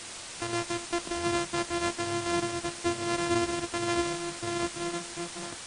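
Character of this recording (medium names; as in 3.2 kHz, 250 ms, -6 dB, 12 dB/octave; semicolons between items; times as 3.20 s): a buzz of ramps at a fixed pitch in blocks of 128 samples; tremolo triangle 3.9 Hz, depth 30%; a quantiser's noise floor 6-bit, dither triangular; MP3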